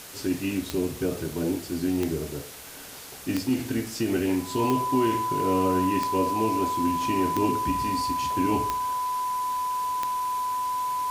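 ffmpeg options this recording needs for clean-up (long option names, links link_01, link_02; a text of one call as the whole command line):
ffmpeg -i in.wav -af "adeclick=threshold=4,bandreject=frequency=1000:width=30,afwtdn=0.0079" out.wav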